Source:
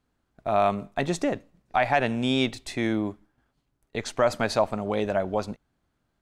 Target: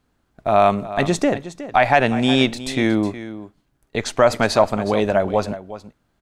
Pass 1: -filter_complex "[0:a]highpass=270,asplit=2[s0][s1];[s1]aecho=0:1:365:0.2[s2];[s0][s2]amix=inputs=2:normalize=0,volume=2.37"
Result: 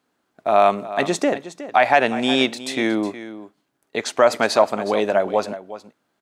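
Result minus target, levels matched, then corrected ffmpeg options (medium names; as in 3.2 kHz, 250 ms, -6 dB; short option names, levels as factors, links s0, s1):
250 Hz band -2.5 dB
-filter_complex "[0:a]asplit=2[s0][s1];[s1]aecho=0:1:365:0.2[s2];[s0][s2]amix=inputs=2:normalize=0,volume=2.37"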